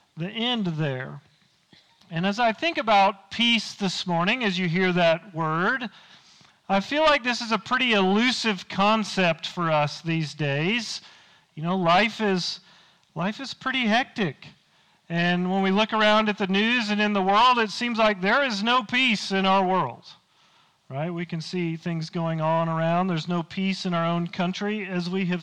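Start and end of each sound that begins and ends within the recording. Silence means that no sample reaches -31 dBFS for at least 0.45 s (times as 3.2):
2.12–5.87
6.7–10.97
11.58–12.55
13.16–14.42
15.1–19.93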